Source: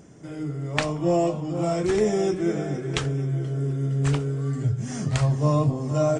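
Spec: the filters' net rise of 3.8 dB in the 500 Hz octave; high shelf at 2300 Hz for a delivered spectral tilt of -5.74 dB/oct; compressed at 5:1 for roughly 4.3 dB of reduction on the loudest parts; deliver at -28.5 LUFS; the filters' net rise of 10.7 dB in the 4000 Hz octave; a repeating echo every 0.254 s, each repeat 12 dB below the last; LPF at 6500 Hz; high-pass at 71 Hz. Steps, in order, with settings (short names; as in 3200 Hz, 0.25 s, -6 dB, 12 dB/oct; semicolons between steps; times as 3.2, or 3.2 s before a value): HPF 71 Hz; LPF 6500 Hz; bell 500 Hz +4.5 dB; high shelf 2300 Hz +7.5 dB; bell 4000 Hz +7.5 dB; compressor 5:1, threshold -20 dBFS; feedback echo 0.254 s, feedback 25%, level -12 dB; gain -3 dB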